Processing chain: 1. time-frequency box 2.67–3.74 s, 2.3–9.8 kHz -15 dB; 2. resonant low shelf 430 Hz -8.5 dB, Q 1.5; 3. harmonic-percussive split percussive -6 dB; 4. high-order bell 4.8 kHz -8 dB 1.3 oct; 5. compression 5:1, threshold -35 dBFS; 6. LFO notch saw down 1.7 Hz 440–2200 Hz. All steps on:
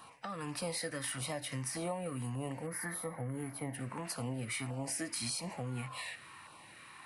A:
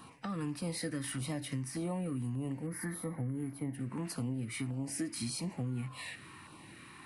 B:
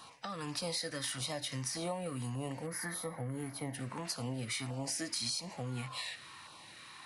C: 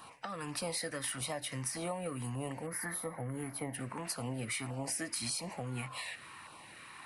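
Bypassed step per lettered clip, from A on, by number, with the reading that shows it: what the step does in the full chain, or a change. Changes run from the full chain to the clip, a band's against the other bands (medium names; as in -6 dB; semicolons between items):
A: 2, crest factor change -3.5 dB; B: 4, 4 kHz band +5.5 dB; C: 3, 125 Hz band -2.0 dB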